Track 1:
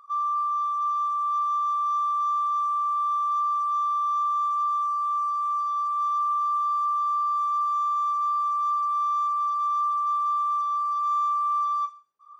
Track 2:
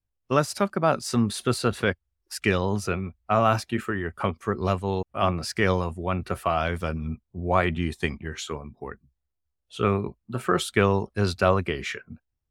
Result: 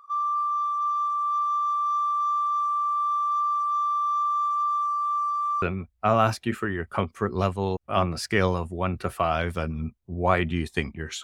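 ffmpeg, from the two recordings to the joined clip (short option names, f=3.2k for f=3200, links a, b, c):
-filter_complex "[0:a]apad=whole_dur=11.23,atrim=end=11.23,atrim=end=5.622[a];[1:a]atrim=start=2.878:end=8.49[b];[a][b]acrossfade=d=0.004:c1=hsin:c2=hsin"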